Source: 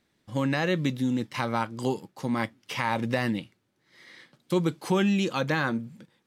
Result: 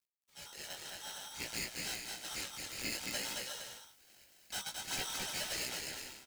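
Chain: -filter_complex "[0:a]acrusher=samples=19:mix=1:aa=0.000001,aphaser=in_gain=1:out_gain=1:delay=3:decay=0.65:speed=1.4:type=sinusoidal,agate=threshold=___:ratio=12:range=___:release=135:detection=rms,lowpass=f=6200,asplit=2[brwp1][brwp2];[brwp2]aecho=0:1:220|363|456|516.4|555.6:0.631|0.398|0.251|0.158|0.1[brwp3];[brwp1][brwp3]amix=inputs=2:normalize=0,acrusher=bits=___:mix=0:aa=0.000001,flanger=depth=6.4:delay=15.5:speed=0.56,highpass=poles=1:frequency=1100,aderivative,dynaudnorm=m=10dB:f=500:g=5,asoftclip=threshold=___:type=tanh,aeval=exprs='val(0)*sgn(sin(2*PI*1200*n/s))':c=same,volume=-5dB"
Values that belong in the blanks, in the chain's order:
-53dB, -8dB, 10, -23dB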